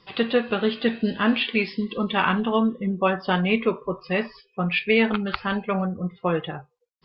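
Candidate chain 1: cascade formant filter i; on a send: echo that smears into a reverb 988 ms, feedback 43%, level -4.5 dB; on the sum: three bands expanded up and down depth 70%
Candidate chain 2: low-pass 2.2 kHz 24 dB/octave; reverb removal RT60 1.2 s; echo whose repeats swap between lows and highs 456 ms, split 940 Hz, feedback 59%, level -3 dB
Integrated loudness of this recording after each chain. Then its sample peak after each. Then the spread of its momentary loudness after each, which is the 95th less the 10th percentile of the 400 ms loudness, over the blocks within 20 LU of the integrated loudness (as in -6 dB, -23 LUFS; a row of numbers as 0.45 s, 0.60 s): -30.0 LUFS, -24.5 LUFS; -8.5 dBFS, -7.0 dBFS; 15 LU, 5 LU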